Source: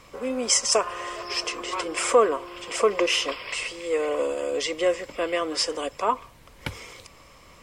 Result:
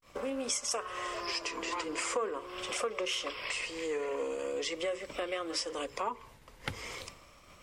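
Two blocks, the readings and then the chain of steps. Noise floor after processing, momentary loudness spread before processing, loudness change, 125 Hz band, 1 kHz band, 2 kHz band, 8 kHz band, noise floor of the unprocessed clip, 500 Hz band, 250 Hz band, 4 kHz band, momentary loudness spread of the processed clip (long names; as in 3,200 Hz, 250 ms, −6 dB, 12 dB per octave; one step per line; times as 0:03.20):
−58 dBFS, 13 LU, −10.5 dB, can't be measured, −10.0 dB, −7.5 dB, −10.5 dB, −51 dBFS, −11.0 dB, −8.5 dB, −9.0 dB, 8 LU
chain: downward expander −43 dBFS
dynamic equaliser 680 Hz, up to −5 dB, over −39 dBFS, Q 3
mains-hum notches 60/120/180/240/300/360/420/480 Hz
downward compressor 3 to 1, threshold −39 dBFS, peak gain reduction 17.5 dB
pitch vibrato 0.43 Hz 96 cents
highs frequency-modulated by the lows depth 0.15 ms
level +3 dB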